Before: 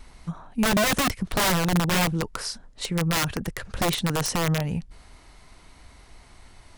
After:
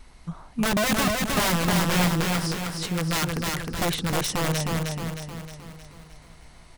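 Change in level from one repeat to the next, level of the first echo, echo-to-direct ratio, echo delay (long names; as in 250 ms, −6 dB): −6.0 dB, −3.0 dB, −1.5 dB, 311 ms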